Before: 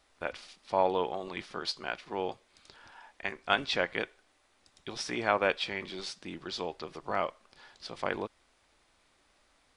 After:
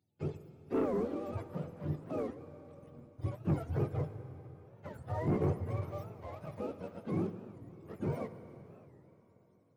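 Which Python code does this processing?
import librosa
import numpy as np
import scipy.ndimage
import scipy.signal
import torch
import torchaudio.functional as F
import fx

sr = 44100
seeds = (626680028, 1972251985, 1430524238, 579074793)

y = fx.octave_mirror(x, sr, pivot_hz=470.0)
y = fx.low_shelf(y, sr, hz=200.0, db=-5.0)
y = fx.leveller(y, sr, passes=2)
y = fx.rev_plate(y, sr, seeds[0], rt60_s=3.8, hf_ratio=0.9, predelay_ms=0, drr_db=10.0)
y = fx.record_warp(y, sr, rpm=45.0, depth_cents=250.0)
y = F.gain(torch.from_numpy(y), -7.0).numpy()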